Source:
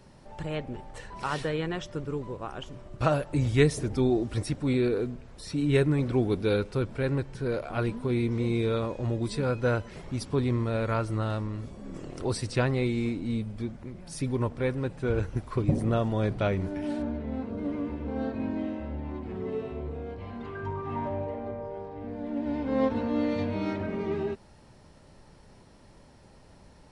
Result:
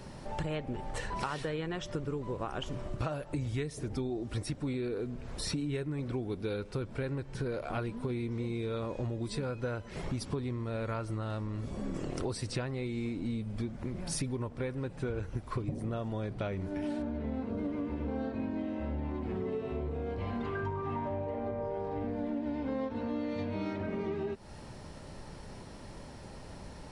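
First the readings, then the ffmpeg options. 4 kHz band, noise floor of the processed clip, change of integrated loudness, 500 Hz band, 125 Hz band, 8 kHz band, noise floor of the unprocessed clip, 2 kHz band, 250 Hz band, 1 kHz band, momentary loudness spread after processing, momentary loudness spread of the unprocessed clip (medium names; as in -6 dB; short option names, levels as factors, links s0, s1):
-3.5 dB, -48 dBFS, -6.5 dB, -7.0 dB, -6.5 dB, -1.0 dB, -54 dBFS, -6.5 dB, -6.0 dB, -4.5 dB, 5 LU, 12 LU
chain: -af "acompressor=threshold=0.0112:ratio=16,volume=2.37"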